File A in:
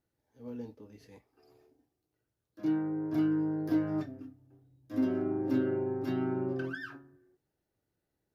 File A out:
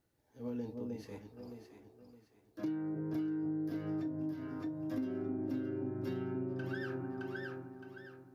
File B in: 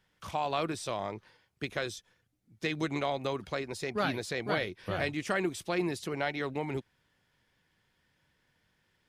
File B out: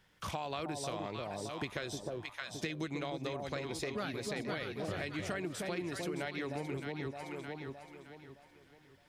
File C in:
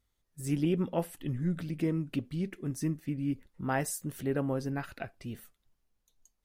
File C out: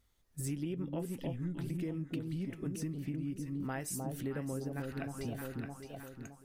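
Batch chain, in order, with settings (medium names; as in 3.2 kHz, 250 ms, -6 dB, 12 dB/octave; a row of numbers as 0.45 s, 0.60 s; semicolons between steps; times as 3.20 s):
echo whose repeats swap between lows and highs 308 ms, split 890 Hz, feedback 57%, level -4 dB; dynamic bell 850 Hz, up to -4 dB, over -44 dBFS, Q 1; compression 6:1, threshold -40 dBFS; trim +4.5 dB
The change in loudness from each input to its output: -7.0 LU, -5.5 LU, -6.0 LU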